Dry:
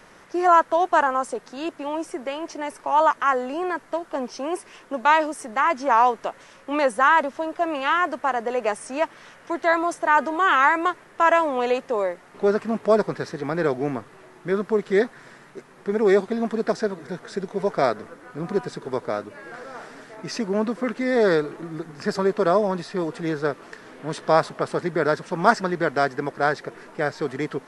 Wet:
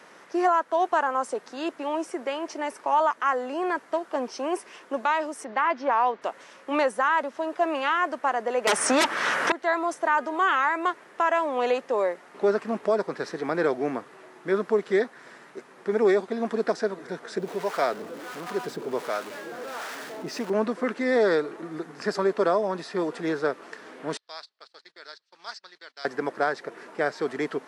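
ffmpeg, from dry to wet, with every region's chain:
ffmpeg -i in.wav -filter_complex "[0:a]asettb=1/sr,asplit=3[link_01][link_02][link_03];[link_01]atrim=end=5.444[link_04];[link_02]atrim=start=5.44:end=6.22,asetpts=PTS-STARTPTS,afade=type=in:duration=0.004:curve=qsin,afade=type=out:start_time=0.776:duration=0.004:curve=qsin,lowpass=frequency=4700:width=0.5412,lowpass=frequency=4700:width=1.3066,bandreject=frequency=1300:width=25[link_05];[link_03]atrim=start=6.216[link_06];[link_04][link_05]acrossfade=duration=0.004:curve1=hsin:curve2=qsin[link_07];[link_07][link_06]acrossfade=duration=0.004:curve1=qsin:curve2=hsin,asettb=1/sr,asplit=3[link_08][link_09][link_10];[link_08]atrim=end=8.674[link_11];[link_09]atrim=start=8.67:end=9.52,asetpts=PTS-STARTPTS,afade=type=in:duration=0.004:curve=qsin,afade=type=out:start_time=0.846:duration=0.004:curve=qsin,equalizer=frequency=1400:width_type=o:width=1.1:gain=5.5,aeval=exprs='0.501*sin(PI/2*7.08*val(0)/0.501)':channel_layout=same[link_12];[link_10]atrim=start=9.516[link_13];[link_11][link_12]acrossfade=duration=0.004:curve1=hsin:curve2=qsin[link_14];[link_14][link_13]acrossfade=duration=0.004:curve1=qsin:curve2=hsin,asettb=1/sr,asplit=3[link_15][link_16][link_17];[link_15]atrim=end=17.384[link_18];[link_16]atrim=start=17.38:end=20.5,asetpts=PTS-STARTPTS,afade=type=in:duration=0.004:curve=qsin,afade=type=out:start_time=3.116:duration=0.004:curve=qsin,aeval=exprs='val(0)+0.5*0.0282*sgn(val(0))':channel_layout=same,acrossover=split=670[link_19][link_20];[link_19]aeval=exprs='val(0)*(1-0.7/2+0.7/2*cos(2*PI*1.4*n/s))':channel_layout=same[link_21];[link_20]aeval=exprs='val(0)*(1-0.7/2-0.7/2*cos(2*PI*1.4*n/s))':channel_layout=same[link_22];[link_21][link_22]amix=inputs=2:normalize=0[link_23];[link_17]atrim=start=20.496[link_24];[link_18][link_23]acrossfade=duration=0.004:curve1=hsin:curve2=qsin[link_25];[link_25][link_24]acrossfade=duration=0.004:curve1=qsin:curve2=hsin,asettb=1/sr,asplit=3[link_26][link_27][link_28];[link_26]atrim=end=24.174[link_29];[link_27]atrim=start=24.17:end=26.05,asetpts=PTS-STARTPTS,afade=type=in:duration=0.004:curve=qsin,afade=type=out:start_time=1.876:duration=0.004:curve=qsin,agate=range=-22dB:threshold=-29dB:ratio=16:release=100:detection=peak,bandpass=frequency=4300:width_type=q:width=3.6[link_30];[link_28]atrim=start=26.046[link_31];[link_29][link_30]acrossfade=duration=0.004:curve1=hsin:curve2=qsin[link_32];[link_32][link_31]acrossfade=duration=0.004:curve1=qsin:curve2=hsin,highpass=250,highshelf=frequency=9300:gain=-4.5,alimiter=limit=-13dB:level=0:latency=1:release=384" out.wav

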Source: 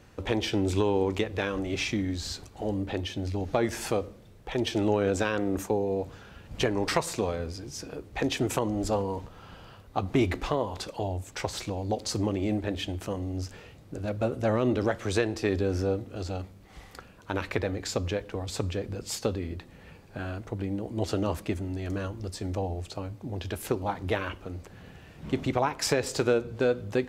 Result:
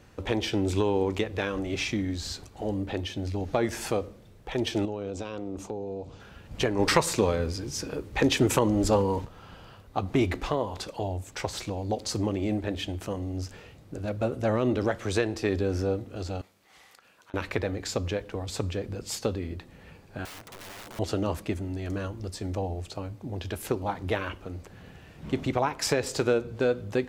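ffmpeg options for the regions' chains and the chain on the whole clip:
ffmpeg -i in.wav -filter_complex "[0:a]asettb=1/sr,asplit=3[link_01][link_02][link_03];[link_01]atrim=end=4.854[link_04];[link_02]atrim=start=4.85:end=6.2,asetpts=PTS-STARTPTS,afade=type=in:duration=0.004:curve=qsin,afade=type=out:start_time=1.346:duration=0.004:curve=qsin,lowpass=6900,equalizer=frequency=1700:width_type=o:width=0.58:gain=-13,acompressor=threshold=-36dB:ratio=2:attack=3.2:release=140:knee=1:detection=peak[link_05];[link_03]atrim=start=6.196[link_06];[link_04][link_05]acrossfade=duration=0.004:curve1=hsin:curve2=qsin[link_07];[link_07][link_06]acrossfade=duration=0.004:curve1=qsin:curve2=hsin,asettb=1/sr,asplit=3[link_08][link_09][link_10];[link_08]atrim=end=6.794[link_11];[link_09]atrim=start=6.79:end=9.25,asetpts=PTS-STARTPTS,afade=type=in:duration=0.004:curve=qsin,afade=type=out:start_time=2.456:duration=0.004:curve=qsin,bandreject=frequency=700:width=6.9,acontrast=33[link_12];[link_10]atrim=start=9.246[link_13];[link_11][link_12]acrossfade=duration=0.004:curve1=hsin:curve2=qsin[link_14];[link_14][link_13]acrossfade=duration=0.004:curve1=qsin:curve2=hsin,asettb=1/sr,asplit=3[link_15][link_16][link_17];[link_15]atrim=end=16.414[link_18];[link_16]atrim=start=16.41:end=17.34,asetpts=PTS-STARTPTS,afade=type=in:duration=0.004:curve=qsin,afade=type=out:start_time=0.926:duration=0.004:curve=qsin,highpass=frequency=1200:poles=1,acompressor=threshold=-50dB:ratio=8:attack=3.2:release=140:knee=1:detection=peak[link_19];[link_17]atrim=start=17.336[link_20];[link_18][link_19]acrossfade=duration=0.004:curve1=hsin:curve2=qsin[link_21];[link_21][link_20]acrossfade=duration=0.004:curve1=qsin:curve2=hsin,asettb=1/sr,asplit=3[link_22][link_23][link_24];[link_22]atrim=end=20.254[link_25];[link_23]atrim=start=20.25:end=20.99,asetpts=PTS-STARTPTS,afade=type=in:duration=0.004:curve=qsin,afade=type=out:start_time=0.736:duration=0.004:curve=qsin,highpass=frequency=300:poles=1,aeval=exprs='(mod(84.1*val(0)+1,2)-1)/84.1':channel_layout=same[link_26];[link_24]atrim=start=20.986[link_27];[link_25][link_26]acrossfade=duration=0.004:curve1=hsin:curve2=qsin[link_28];[link_28][link_27]acrossfade=duration=0.004:curve1=qsin:curve2=hsin" out.wav

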